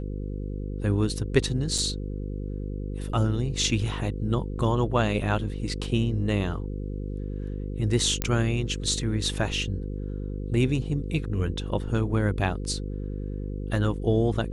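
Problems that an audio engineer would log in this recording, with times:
buzz 50 Hz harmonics 10 -32 dBFS
1.78 gap 3.9 ms
8.22 pop -9 dBFS

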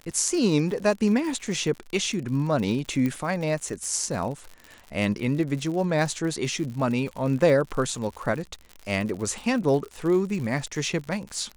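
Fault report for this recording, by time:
crackle 86/s -32 dBFS
3.06 pop -15 dBFS

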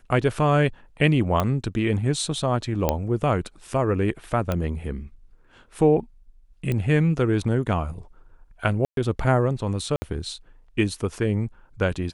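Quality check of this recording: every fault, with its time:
1.4 pop -9 dBFS
2.89 pop -7 dBFS
4.52 pop -12 dBFS
6.72 pop -14 dBFS
8.85–8.97 gap 0.122 s
9.96–10.02 gap 60 ms

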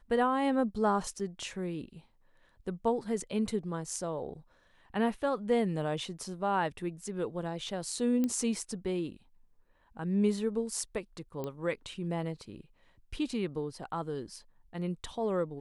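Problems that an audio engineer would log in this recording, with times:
1.19 gap 4.9 ms
8.24 pop -19 dBFS
11.44 pop -24 dBFS

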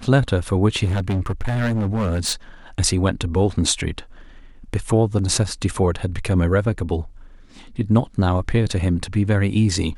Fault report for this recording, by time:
0.84–2.33 clipped -18 dBFS

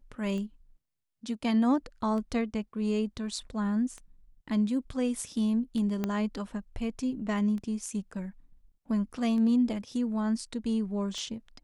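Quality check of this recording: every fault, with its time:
tick 33 1/3 rpm -28 dBFS
6.04 pop -17 dBFS

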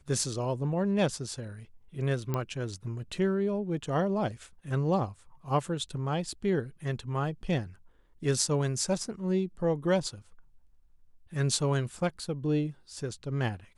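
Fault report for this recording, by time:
2.34 pop -17 dBFS

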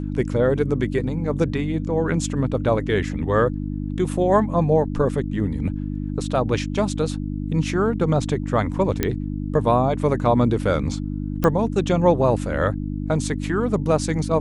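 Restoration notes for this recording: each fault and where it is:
hum 50 Hz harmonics 6 -27 dBFS
9.03 pop -6 dBFS
11.44 pop -8 dBFS

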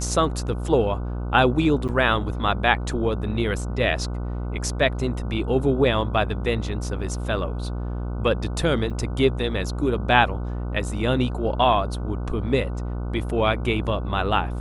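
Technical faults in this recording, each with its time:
buzz 60 Hz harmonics 25 -28 dBFS
1.88–1.89 gap 7.9 ms
8.9–8.91 gap 6.3 ms

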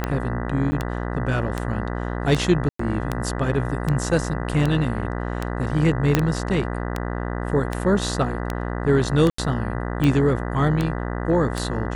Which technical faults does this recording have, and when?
buzz 60 Hz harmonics 33 -27 dBFS
tick 78 rpm -10 dBFS
0.71–0.72 gap 10 ms
2.69–2.79 gap 0.104 s
6.15 pop -3 dBFS
9.3–9.38 gap 84 ms

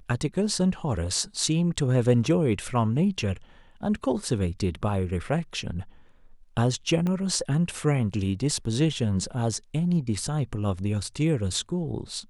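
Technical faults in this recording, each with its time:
7.07 pop -18 dBFS

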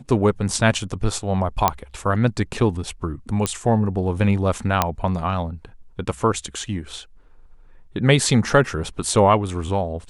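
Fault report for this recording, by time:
1.68 pop -1 dBFS
3.46 pop -7 dBFS
4.82 pop -2 dBFS

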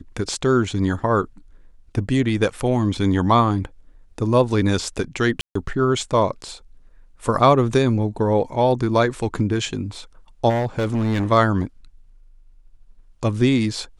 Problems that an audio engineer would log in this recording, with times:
5.41–5.55 gap 0.144 s
10.49–11.32 clipped -17.5 dBFS

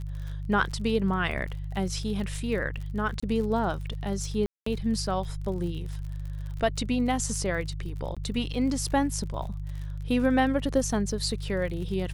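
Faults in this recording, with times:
crackle 43/s -36 dBFS
hum 50 Hz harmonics 3 -34 dBFS
3.2–3.23 gap 25 ms
4.46–4.66 gap 0.204 s
8.15–8.17 gap 16 ms

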